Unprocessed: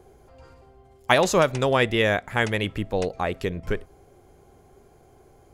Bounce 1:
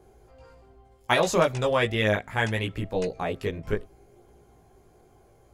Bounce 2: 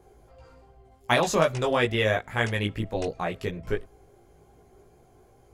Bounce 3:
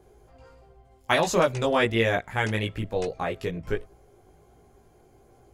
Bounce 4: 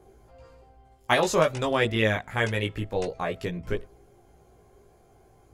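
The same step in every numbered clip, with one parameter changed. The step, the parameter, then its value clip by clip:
chorus, rate: 0.7 Hz, 2.6 Hz, 1.4 Hz, 0.26 Hz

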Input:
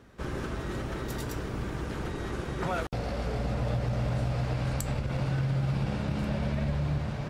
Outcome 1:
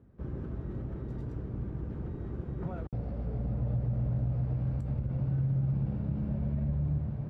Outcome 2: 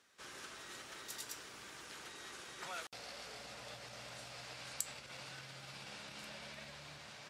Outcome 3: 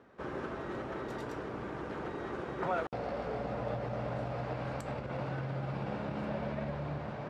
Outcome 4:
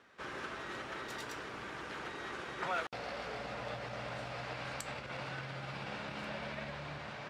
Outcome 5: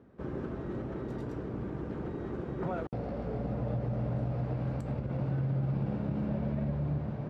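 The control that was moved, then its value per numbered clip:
band-pass filter, frequency: 100 Hz, 7.4 kHz, 720 Hz, 2.1 kHz, 270 Hz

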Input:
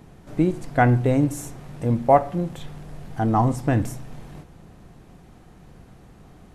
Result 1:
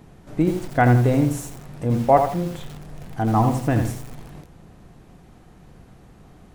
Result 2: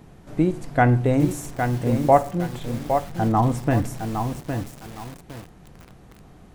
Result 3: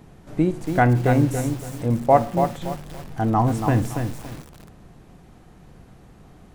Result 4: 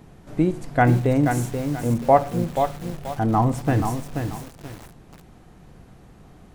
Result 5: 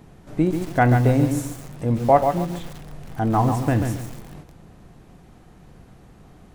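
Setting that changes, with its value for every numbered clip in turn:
bit-crushed delay, time: 82 ms, 811 ms, 283 ms, 482 ms, 138 ms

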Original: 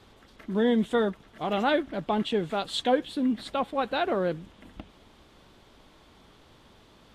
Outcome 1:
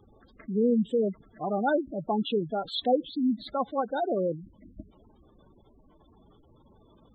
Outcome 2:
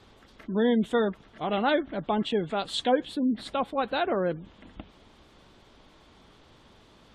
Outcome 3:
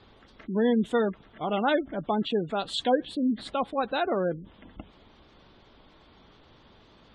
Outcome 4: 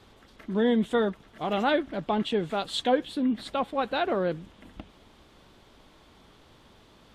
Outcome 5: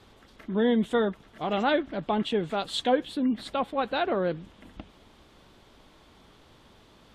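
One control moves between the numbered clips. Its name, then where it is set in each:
spectral gate, under each frame's peak: -10 dB, -35 dB, -25 dB, -60 dB, -50 dB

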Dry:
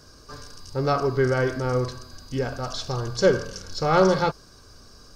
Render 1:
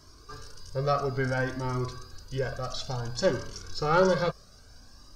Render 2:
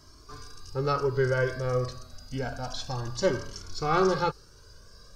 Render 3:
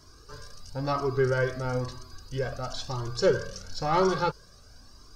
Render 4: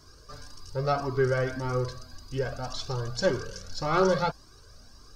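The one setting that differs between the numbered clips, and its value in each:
Shepard-style flanger, rate: 0.58 Hz, 0.29 Hz, 1 Hz, 1.8 Hz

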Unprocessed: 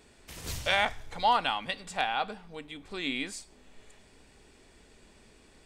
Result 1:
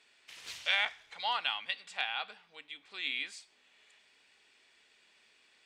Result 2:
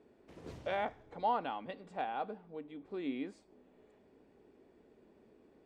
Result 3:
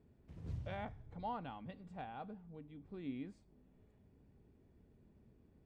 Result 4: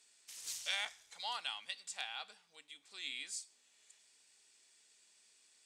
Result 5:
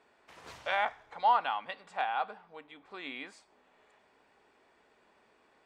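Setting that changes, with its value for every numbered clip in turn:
band-pass filter, frequency: 2.8 kHz, 360 Hz, 120 Hz, 7.1 kHz, 1 kHz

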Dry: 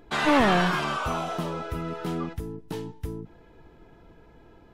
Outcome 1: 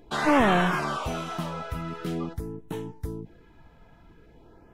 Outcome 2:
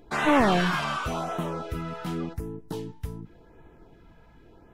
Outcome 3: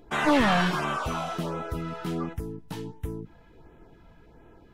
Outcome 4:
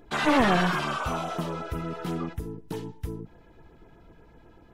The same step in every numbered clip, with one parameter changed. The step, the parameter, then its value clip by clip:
LFO notch, rate: 0.46 Hz, 0.89 Hz, 1.4 Hz, 8.1 Hz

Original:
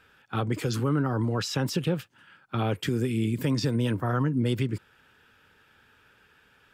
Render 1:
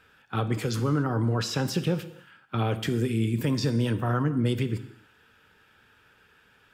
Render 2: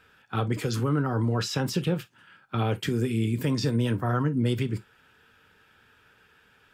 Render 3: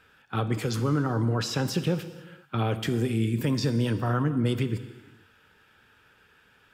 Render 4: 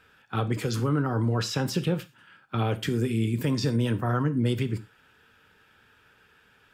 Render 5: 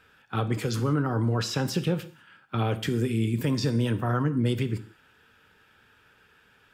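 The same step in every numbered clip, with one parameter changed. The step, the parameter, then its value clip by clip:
gated-style reverb, gate: 320 ms, 80 ms, 520 ms, 140 ms, 210 ms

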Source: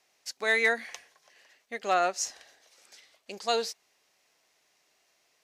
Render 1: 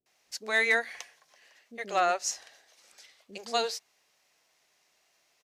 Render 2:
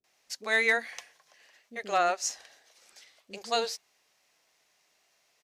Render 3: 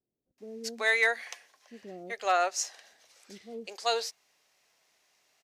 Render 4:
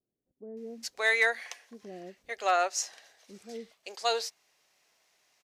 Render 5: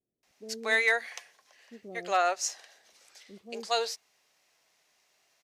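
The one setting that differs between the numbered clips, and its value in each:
bands offset in time, time: 60 ms, 40 ms, 380 ms, 570 ms, 230 ms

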